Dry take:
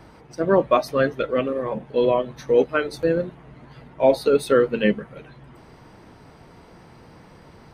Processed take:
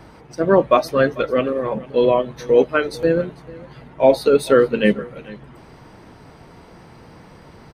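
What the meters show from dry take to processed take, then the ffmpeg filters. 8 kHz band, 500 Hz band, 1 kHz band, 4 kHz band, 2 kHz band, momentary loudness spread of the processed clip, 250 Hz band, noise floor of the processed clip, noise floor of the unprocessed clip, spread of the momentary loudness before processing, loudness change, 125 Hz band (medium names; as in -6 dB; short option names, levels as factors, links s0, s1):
+3.5 dB, +3.5 dB, +3.5 dB, +3.5 dB, +3.5 dB, 11 LU, +3.5 dB, -45 dBFS, -49 dBFS, 10 LU, +3.5 dB, +3.5 dB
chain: -af "aecho=1:1:445:0.0891,volume=1.5"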